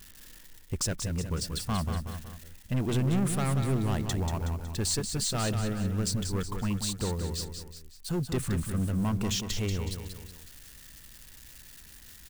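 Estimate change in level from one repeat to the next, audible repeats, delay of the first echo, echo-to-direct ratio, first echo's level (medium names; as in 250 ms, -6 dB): -6.5 dB, 3, 185 ms, -6.0 dB, -7.0 dB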